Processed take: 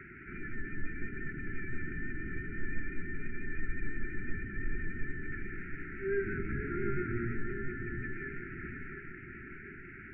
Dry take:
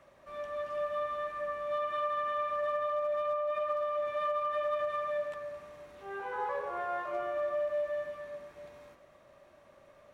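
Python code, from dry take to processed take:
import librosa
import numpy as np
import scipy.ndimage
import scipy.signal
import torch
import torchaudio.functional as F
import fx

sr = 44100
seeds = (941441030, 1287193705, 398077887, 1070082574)

p1 = fx.delta_mod(x, sr, bps=16000, step_db=-52.0)
p2 = scipy.signal.sosfilt(scipy.signal.butter(12, 2300.0, 'lowpass', fs=sr, output='sos'), p1)
p3 = fx.rider(p2, sr, range_db=3, speed_s=0.5)
p4 = p2 + (p3 * 10.0 ** (-2.0 / 20.0))
p5 = fx.vibrato(p4, sr, rate_hz=5.9, depth_cents=33.0)
p6 = fx.brickwall_bandstop(p5, sr, low_hz=420.0, high_hz=1300.0)
p7 = fx.echo_feedback(p6, sr, ms=712, feedback_pct=50, wet_db=-8.0)
y = p7 * 10.0 ** (7.5 / 20.0)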